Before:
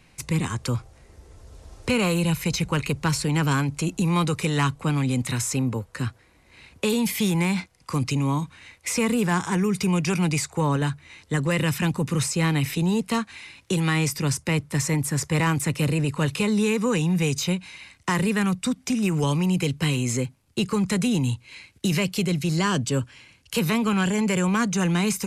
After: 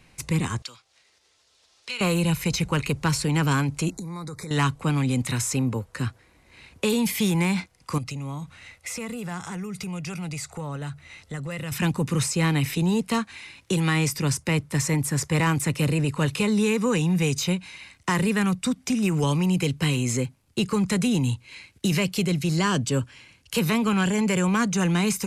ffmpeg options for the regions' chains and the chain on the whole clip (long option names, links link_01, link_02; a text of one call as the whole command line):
ffmpeg -i in.wav -filter_complex "[0:a]asettb=1/sr,asplit=3[link_01][link_02][link_03];[link_01]atrim=end=0.624[link_04];[link_02]atrim=start=0.62:end=2.01,asetpts=PTS-STARTPTS,afade=type=in:duration=0.004:curve=qsin,afade=type=out:start_time=1.386:duration=0.004:curve=qsin,acompressor=mode=upward:threshold=-38dB:ratio=2.5:attack=3.2:release=140:knee=2.83:detection=peak,bandpass=frequency=3900:width_type=q:width=1.4[link_05];[link_03]atrim=start=2.006[link_06];[link_04][link_05]acrossfade=duration=0.004:curve1=hsin:curve2=qsin[link_07];[link_07][link_06]acrossfade=duration=0.004:curve1=qsin:curve2=hsin,asettb=1/sr,asplit=3[link_08][link_09][link_10];[link_08]atrim=end=3.904[link_11];[link_09]atrim=start=3.9:end=4.51,asetpts=PTS-STARTPTS,afade=type=in:duration=0.004:curve=qsin,afade=type=out:start_time=0.606:duration=0.004:curve=qsin,acompressor=threshold=-31dB:ratio=16:attack=3.2:release=140:knee=1:detection=peak,asuperstop=centerf=2900:order=8:qfactor=1.9[link_12];[link_10]atrim=start=4.506[link_13];[link_11][link_12]acrossfade=duration=0.004:curve1=hsin:curve2=qsin[link_14];[link_14][link_13]acrossfade=duration=0.004:curve1=qsin:curve2=hsin,asettb=1/sr,asplit=3[link_15][link_16][link_17];[link_15]atrim=end=7.984[link_18];[link_16]atrim=start=7.98:end=11.72,asetpts=PTS-STARTPTS,afade=type=in:duration=0.004:curve=qsin,afade=type=out:start_time=3.736:duration=0.004:curve=qsin,acompressor=threshold=-34dB:ratio=2.5:attack=3.2:release=140:knee=1:detection=peak,aecho=1:1:1.5:0.37,atrim=end_sample=164934[link_19];[link_17]atrim=start=11.716[link_20];[link_18][link_19]acrossfade=duration=0.004:curve1=hsin:curve2=qsin[link_21];[link_21][link_20]acrossfade=duration=0.004:curve1=qsin:curve2=hsin" out.wav